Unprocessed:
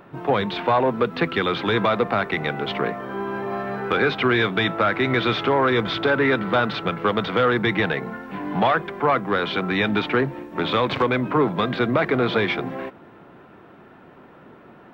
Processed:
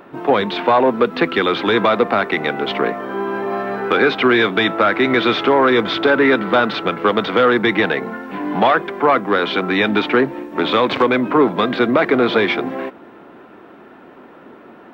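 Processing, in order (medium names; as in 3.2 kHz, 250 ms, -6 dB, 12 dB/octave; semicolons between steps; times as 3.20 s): resonant low shelf 190 Hz -7.5 dB, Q 1.5; trim +5 dB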